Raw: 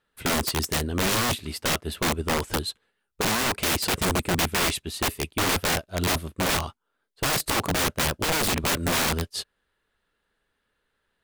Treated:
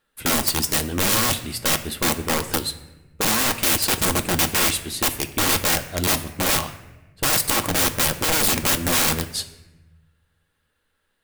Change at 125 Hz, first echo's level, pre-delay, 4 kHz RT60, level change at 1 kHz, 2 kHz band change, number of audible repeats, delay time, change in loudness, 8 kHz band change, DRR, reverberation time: +1.0 dB, none, 4 ms, 0.75 s, +2.0 dB, +2.5 dB, none, none, +5.0 dB, +7.0 dB, 7.5 dB, 1.1 s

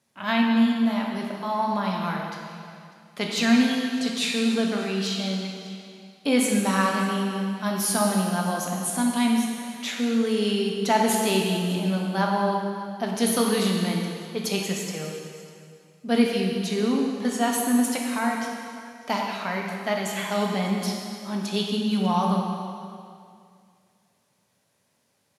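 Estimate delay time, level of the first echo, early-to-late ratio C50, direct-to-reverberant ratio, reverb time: 0.598 s, -20.5 dB, 1.5 dB, -0.5 dB, 2.3 s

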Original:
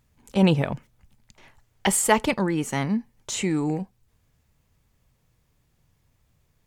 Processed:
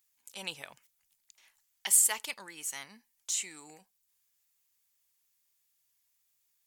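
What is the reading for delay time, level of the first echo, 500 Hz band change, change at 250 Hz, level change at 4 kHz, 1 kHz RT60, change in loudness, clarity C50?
none, none, -25.0 dB, -33.0 dB, -6.5 dB, none, -5.0 dB, none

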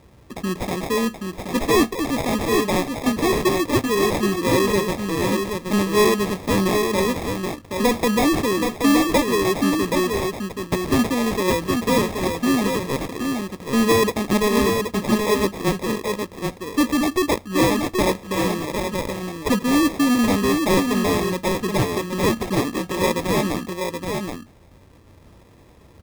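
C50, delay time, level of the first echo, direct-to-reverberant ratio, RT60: none, 0.776 s, -5.0 dB, none, none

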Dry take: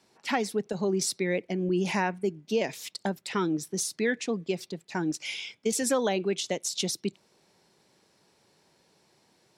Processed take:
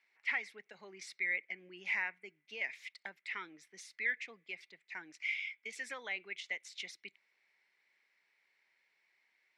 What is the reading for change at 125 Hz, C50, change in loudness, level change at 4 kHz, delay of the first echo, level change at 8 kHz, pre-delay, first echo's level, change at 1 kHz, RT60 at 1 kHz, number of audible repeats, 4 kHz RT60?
under -30 dB, none, -10.0 dB, -13.5 dB, none, -22.5 dB, none, none, -17.5 dB, none, none, none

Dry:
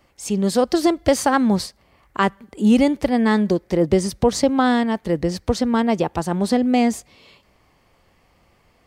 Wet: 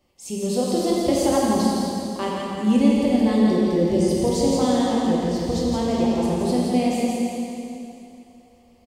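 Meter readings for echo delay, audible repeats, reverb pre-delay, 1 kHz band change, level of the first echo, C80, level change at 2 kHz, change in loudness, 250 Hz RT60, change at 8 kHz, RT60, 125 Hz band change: 0.168 s, 1, 5 ms, -3.5 dB, -4.5 dB, -3.0 dB, -8.5 dB, -1.5 dB, 2.9 s, -1.0 dB, 2.9 s, -1.0 dB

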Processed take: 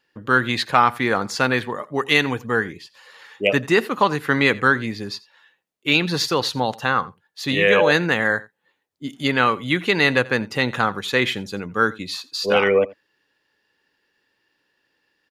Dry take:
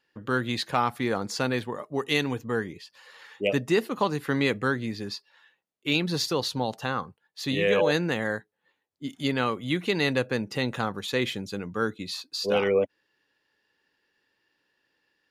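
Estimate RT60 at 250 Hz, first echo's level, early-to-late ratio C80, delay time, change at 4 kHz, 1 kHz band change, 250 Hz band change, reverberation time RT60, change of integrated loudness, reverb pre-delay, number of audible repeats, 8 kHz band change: none, -21.5 dB, none, 86 ms, +7.0 dB, +9.5 dB, +4.5 dB, none, +7.5 dB, none, 1, +4.5 dB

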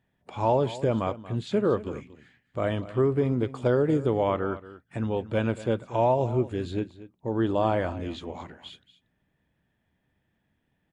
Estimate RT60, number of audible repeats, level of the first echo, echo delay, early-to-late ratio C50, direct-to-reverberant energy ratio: none, 1, -16.0 dB, 0.233 s, none, none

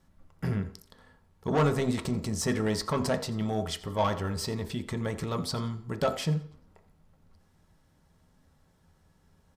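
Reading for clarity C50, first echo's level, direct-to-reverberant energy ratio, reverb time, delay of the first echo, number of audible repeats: 13.0 dB, -19.0 dB, 7.0 dB, 0.55 s, 87 ms, 1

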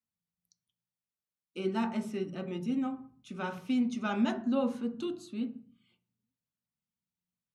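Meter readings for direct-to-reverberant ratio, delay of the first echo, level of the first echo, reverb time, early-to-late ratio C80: 5.0 dB, none, none, 0.45 s, 17.5 dB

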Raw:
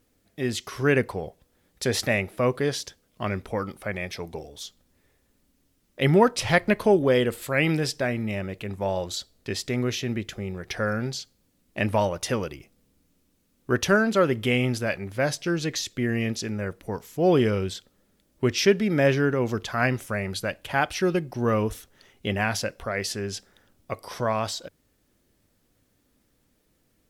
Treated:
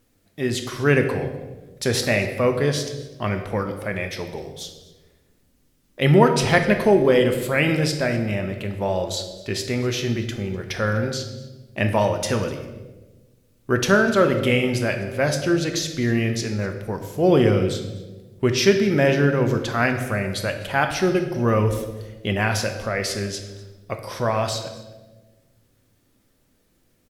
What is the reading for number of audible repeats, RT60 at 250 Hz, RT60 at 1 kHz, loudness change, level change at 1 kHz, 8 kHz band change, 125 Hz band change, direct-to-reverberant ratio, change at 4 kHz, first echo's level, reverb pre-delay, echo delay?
1, 1.5 s, 1.0 s, +4.0 dB, +3.5 dB, +3.5 dB, +5.5 dB, 5.5 dB, +3.5 dB, -21.5 dB, 5 ms, 0.249 s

